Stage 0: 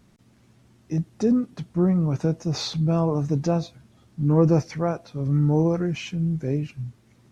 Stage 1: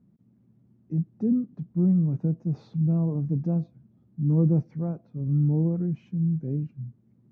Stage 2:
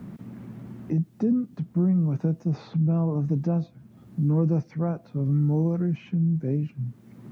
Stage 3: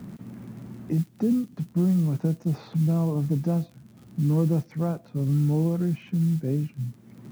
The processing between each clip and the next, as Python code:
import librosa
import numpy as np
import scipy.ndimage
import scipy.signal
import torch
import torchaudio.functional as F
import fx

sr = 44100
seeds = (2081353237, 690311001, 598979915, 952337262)

y1 = fx.bandpass_q(x, sr, hz=180.0, q=1.6)
y2 = fx.tilt_shelf(y1, sr, db=-8.0, hz=770.0)
y2 = fx.band_squash(y2, sr, depth_pct=70)
y2 = y2 * 10.0 ** (7.5 / 20.0)
y3 = fx.mod_noise(y2, sr, seeds[0], snr_db=29)
y3 = fx.dmg_crackle(y3, sr, seeds[1], per_s=49.0, level_db=-41.0)